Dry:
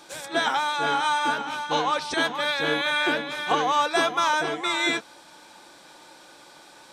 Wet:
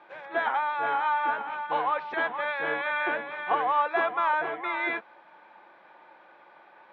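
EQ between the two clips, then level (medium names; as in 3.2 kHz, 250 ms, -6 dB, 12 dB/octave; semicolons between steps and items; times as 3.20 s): cabinet simulation 130–2100 Hz, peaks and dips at 140 Hz -4 dB, 280 Hz -9 dB, 470 Hz -3 dB, 1.4 kHz -4 dB; bass shelf 270 Hz -11.5 dB; 0.0 dB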